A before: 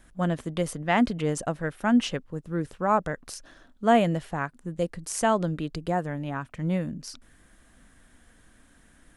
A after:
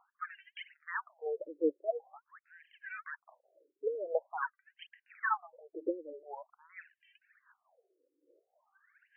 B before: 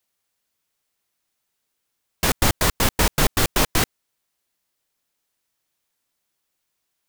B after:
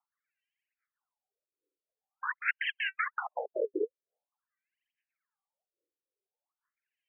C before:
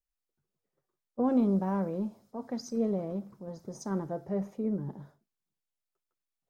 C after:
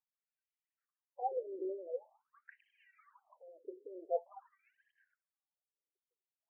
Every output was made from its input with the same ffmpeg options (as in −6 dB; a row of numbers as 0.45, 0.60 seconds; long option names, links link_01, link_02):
-af "aphaser=in_gain=1:out_gain=1:delay=2.6:decay=0.77:speed=1.2:type=sinusoidal,afftfilt=real='re*between(b*sr/1024,390*pow(2300/390,0.5+0.5*sin(2*PI*0.46*pts/sr))/1.41,390*pow(2300/390,0.5+0.5*sin(2*PI*0.46*pts/sr))*1.41)':imag='im*between(b*sr/1024,390*pow(2300/390,0.5+0.5*sin(2*PI*0.46*pts/sr))/1.41,390*pow(2300/390,0.5+0.5*sin(2*PI*0.46*pts/sr))*1.41)':win_size=1024:overlap=0.75,volume=-7.5dB"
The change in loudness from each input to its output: −11.5, −13.0, −9.5 LU